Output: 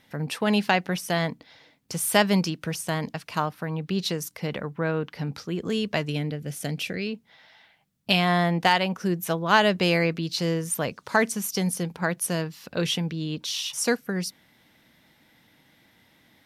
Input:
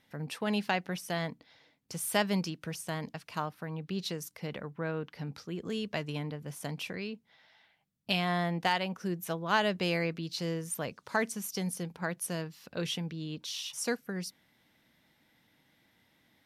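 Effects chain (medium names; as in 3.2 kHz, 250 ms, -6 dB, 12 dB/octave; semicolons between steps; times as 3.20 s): 6.08–7.07 s: peaking EQ 1 kHz -15 dB 0.52 oct; trim +8.5 dB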